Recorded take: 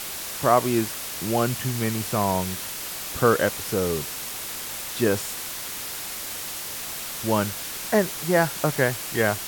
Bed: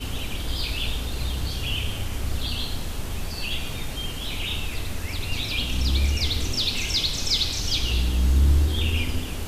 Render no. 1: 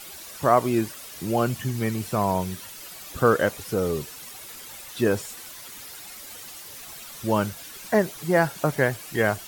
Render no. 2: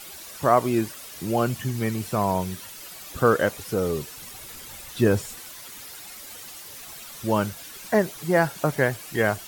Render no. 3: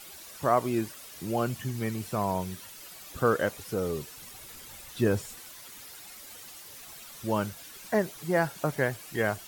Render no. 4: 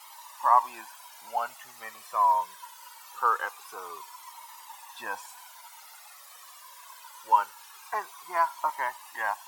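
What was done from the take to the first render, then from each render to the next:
noise reduction 11 dB, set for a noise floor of -34 dBFS
4.17–5.39 s: bass shelf 160 Hz +10.5 dB
trim -5.5 dB
resonant high-pass 960 Hz, resonance Q 9.7; Shepard-style flanger falling 0.23 Hz

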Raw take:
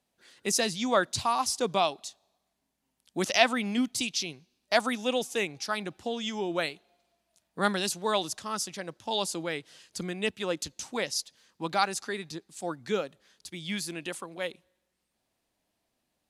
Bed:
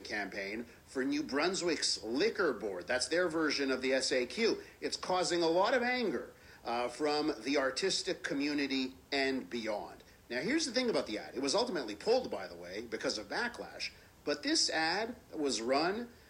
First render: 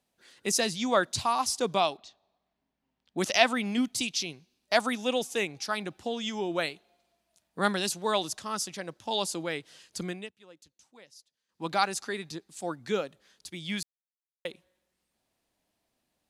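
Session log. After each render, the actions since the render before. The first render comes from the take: 1.97–3.18 s: distance through air 200 m; 10.10–11.67 s: dip -22.5 dB, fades 0.19 s; 13.83–14.45 s: mute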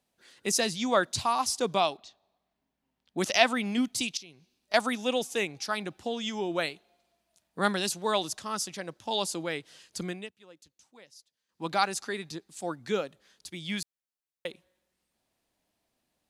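4.17–4.74 s: compression 2:1, threshold -55 dBFS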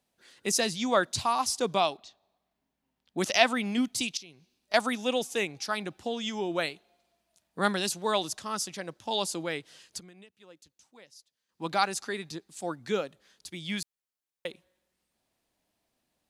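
9.99–10.40 s: compression, threshold -49 dBFS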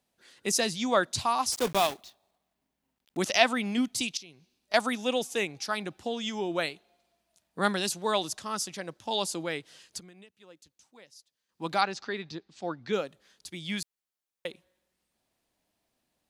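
1.52–3.18 s: block-companded coder 3-bit; 11.81–12.93 s: low-pass 5.1 kHz 24 dB/octave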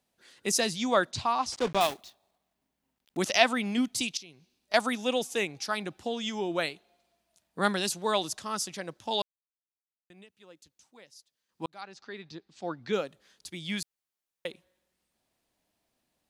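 1.11–1.81 s: distance through air 95 m; 9.22–10.10 s: mute; 11.66–12.80 s: fade in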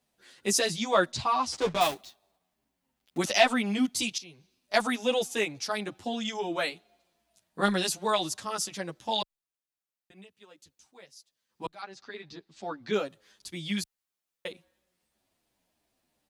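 in parallel at -4 dB: saturation -14 dBFS, distortion -17 dB; on the sum: endless flanger 9.2 ms -2.8 Hz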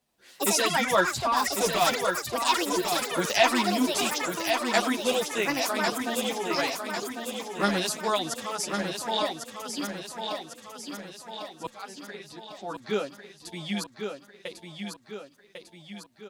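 ever faster or slower copies 86 ms, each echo +6 st, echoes 3; on a send: feedback delay 1099 ms, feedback 52%, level -6 dB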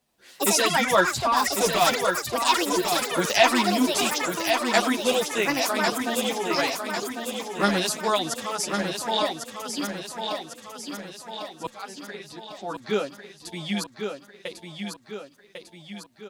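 trim +3 dB

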